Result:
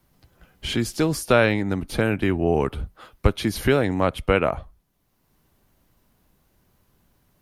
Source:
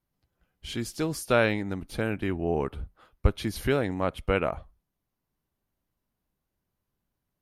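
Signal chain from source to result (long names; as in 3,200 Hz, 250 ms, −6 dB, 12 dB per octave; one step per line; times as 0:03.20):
multiband upward and downward compressor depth 40%
level +6.5 dB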